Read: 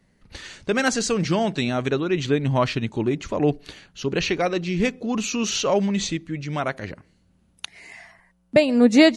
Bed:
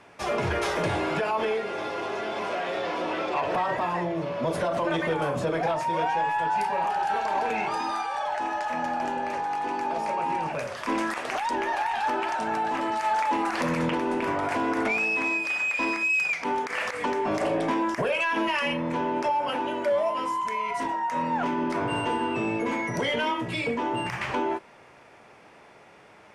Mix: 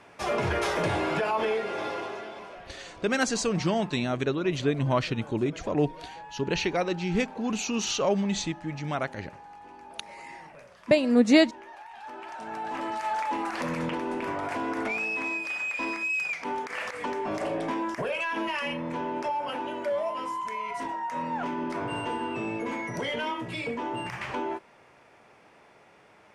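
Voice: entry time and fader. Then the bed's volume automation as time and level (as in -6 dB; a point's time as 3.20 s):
2.35 s, -4.5 dB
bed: 1.91 s -0.5 dB
2.71 s -18.5 dB
11.88 s -18.5 dB
12.81 s -4.5 dB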